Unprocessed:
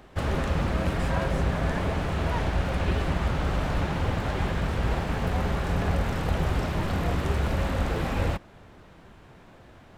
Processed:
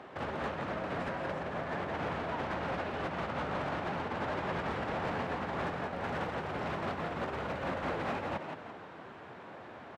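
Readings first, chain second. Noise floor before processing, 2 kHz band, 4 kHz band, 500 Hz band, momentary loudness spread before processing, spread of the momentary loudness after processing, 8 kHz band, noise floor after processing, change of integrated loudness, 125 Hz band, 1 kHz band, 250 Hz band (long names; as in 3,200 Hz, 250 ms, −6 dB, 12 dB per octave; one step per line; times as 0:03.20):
−51 dBFS, −4.5 dB, −8.5 dB, −5.0 dB, 1 LU, 11 LU, below −10 dB, −49 dBFS, −8.5 dB, −16.0 dB, −3.0 dB, −9.0 dB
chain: high-pass filter 80 Hz 24 dB per octave
high-shelf EQ 9,700 Hz −9 dB
compressor whose output falls as the input rises −31 dBFS, ratio −0.5
mid-hump overdrive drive 19 dB, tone 1,200 Hz, clips at −17.5 dBFS
on a send: echo with shifted repeats 170 ms, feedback 39%, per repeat +67 Hz, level −5.5 dB
on the sum: level −8 dB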